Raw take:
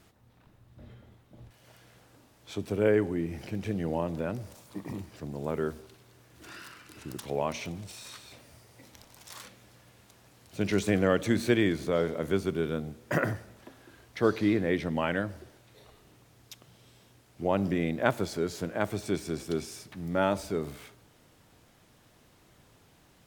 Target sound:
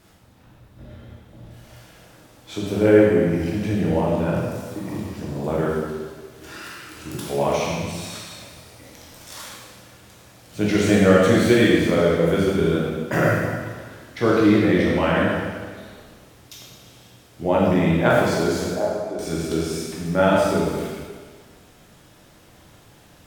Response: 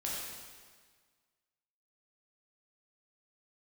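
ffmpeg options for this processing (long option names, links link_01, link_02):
-filter_complex "[0:a]asettb=1/sr,asplit=3[link_01][link_02][link_03];[link_01]atrim=end=18.644[link_04];[link_02]atrim=start=18.64:end=19.19,asetpts=PTS-STARTPTS,afade=type=in:duration=0.004:curve=qsin,afade=type=out:start_time=0.546:duration=0.004:curve=qsin,bandpass=frequency=610:width_type=q:width=2.2:csg=0[link_05];[link_03]atrim=start=19.186[link_06];[link_04][link_05]acrossfade=duration=0.004:curve1=hsin:curve2=qsin[link_07];[link_07][link_06]acrossfade=duration=0.004:curve1=qsin:curve2=hsin[link_08];[1:a]atrim=start_sample=2205[link_09];[link_08][link_09]afir=irnorm=-1:irlink=0,volume=7dB"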